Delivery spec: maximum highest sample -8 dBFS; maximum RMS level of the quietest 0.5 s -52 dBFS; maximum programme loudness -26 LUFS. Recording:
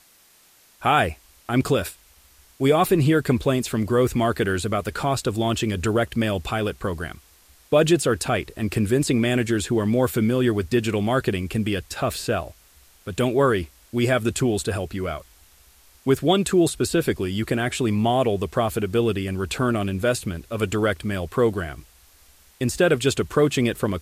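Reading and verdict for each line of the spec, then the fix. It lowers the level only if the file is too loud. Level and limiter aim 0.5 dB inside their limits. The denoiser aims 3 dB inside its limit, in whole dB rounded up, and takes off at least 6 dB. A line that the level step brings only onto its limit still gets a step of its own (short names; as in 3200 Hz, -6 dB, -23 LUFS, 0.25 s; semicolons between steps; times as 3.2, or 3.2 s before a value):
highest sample -5.5 dBFS: fail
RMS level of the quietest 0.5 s -56 dBFS: OK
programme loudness -22.5 LUFS: fail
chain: gain -4 dB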